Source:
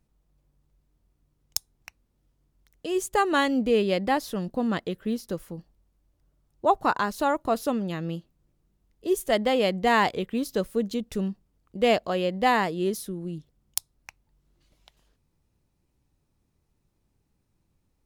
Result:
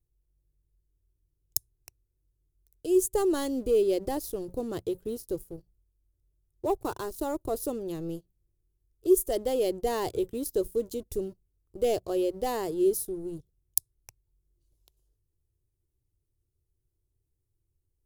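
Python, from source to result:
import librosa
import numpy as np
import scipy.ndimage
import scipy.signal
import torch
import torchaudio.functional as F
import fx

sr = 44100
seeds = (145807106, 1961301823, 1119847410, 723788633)

y = fx.law_mismatch(x, sr, coded='A', at=(6.82, 7.26))
y = fx.hum_notches(y, sr, base_hz=60, count=3)
y = fx.leveller(y, sr, passes=2)
y = fx.curve_eq(y, sr, hz=(120.0, 200.0, 370.0, 590.0, 930.0, 2000.0, 11000.0), db=(0, -23, -3, -14, -19, -25, 0))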